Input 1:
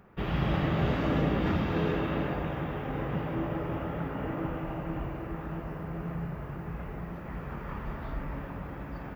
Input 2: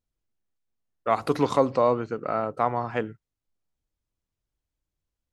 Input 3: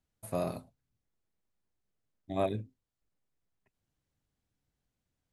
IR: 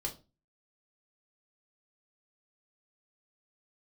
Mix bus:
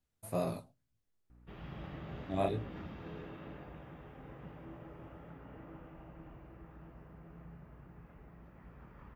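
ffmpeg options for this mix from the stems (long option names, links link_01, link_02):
-filter_complex "[0:a]aeval=exprs='val(0)+0.00891*(sin(2*PI*60*n/s)+sin(2*PI*2*60*n/s)/2+sin(2*PI*3*60*n/s)/3+sin(2*PI*4*60*n/s)/4+sin(2*PI*5*60*n/s)/5)':channel_layout=same,adelay=1300,volume=-18dB[link_01];[2:a]flanger=delay=15.5:depth=6.5:speed=2.3,volume=1dB,asplit=2[link_02][link_03];[link_03]volume=-19.5dB[link_04];[3:a]atrim=start_sample=2205[link_05];[link_04][link_05]afir=irnorm=-1:irlink=0[link_06];[link_01][link_02][link_06]amix=inputs=3:normalize=0"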